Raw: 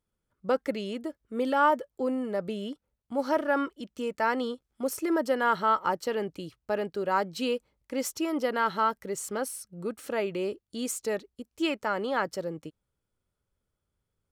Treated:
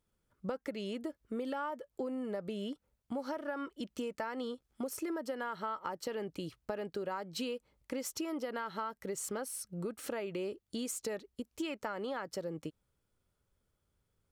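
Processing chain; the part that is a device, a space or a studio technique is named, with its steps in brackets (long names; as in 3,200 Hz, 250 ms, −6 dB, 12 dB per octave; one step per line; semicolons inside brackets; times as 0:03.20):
serial compression, leveller first (downward compressor 2 to 1, threshold −28 dBFS, peak gain reduction 6 dB; downward compressor 6 to 1, threshold −38 dBFS, peak gain reduction 13.5 dB)
level +2.5 dB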